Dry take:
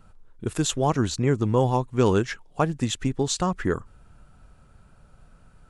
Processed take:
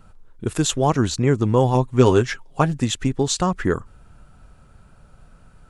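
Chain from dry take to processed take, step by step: 1.74–2.80 s: comb 7.5 ms, depth 52%; trim +4 dB

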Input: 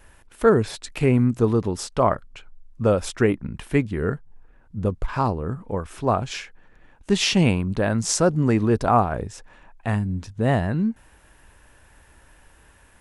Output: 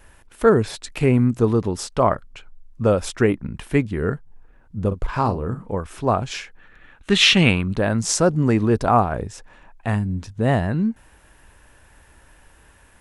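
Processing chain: 4.87–5.71 s: doubling 42 ms -9.5 dB; 6.59–7.74 s: time-frequency box 1.1–4.3 kHz +8 dB; trim +1.5 dB

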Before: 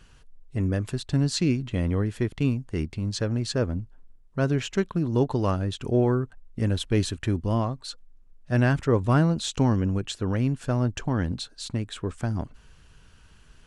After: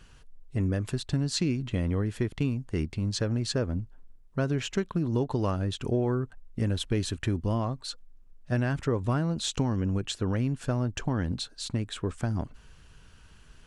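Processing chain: compression, threshold -23 dBFS, peak gain reduction 8 dB

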